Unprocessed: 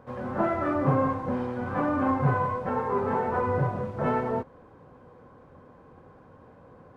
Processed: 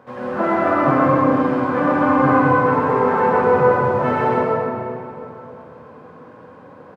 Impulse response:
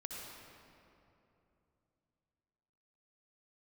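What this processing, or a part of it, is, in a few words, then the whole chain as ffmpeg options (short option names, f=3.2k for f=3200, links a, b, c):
PA in a hall: -filter_complex "[0:a]highpass=150,equalizer=f=2.7k:t=o:w=2.8:g=5,aecho=1:1:132:0.562[a];[1:a]atrim=start_sample=2205[b];[a][b]afir=irnorm=-1:irlink=0,volume=8.5dB"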